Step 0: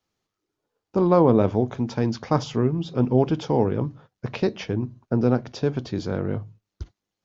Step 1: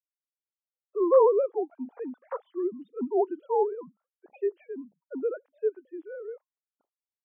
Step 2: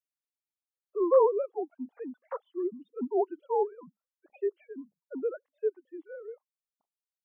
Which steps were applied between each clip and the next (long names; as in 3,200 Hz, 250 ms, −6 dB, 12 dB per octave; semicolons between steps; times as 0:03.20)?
three sine waves on the formant tracks; three-way crossover with the lows and the highs turned down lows −12 dB, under 410 Hz, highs −14 dB, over 2,600 Hz; every bin expanded away from the loudest bin 1.5 to 1
reverb reduction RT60 2 s; level −2 dB